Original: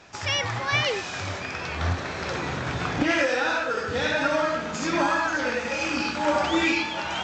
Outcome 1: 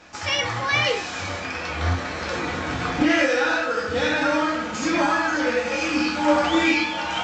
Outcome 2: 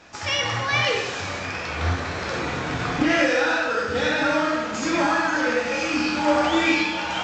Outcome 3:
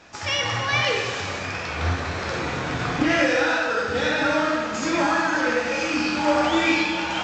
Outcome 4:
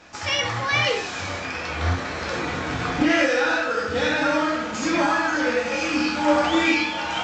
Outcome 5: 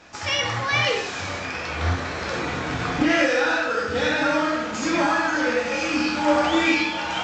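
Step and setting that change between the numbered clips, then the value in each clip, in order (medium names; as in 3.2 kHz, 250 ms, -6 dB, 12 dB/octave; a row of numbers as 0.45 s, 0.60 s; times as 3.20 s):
gated-style reverb, gate: 80 ms, 330 ms, 530 ms, 130 ms, 200 ms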